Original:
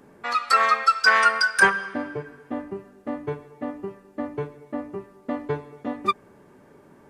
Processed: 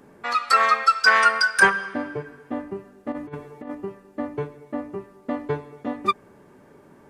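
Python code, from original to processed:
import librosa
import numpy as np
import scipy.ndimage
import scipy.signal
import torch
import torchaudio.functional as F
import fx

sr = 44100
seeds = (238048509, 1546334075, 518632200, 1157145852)

y = fx.over_compress(x, sr, threshold_db=-33.0, ratio=-0.5, at=(3.12, 3.75))
y = y * 10.0 ** (1.0 / 20.0)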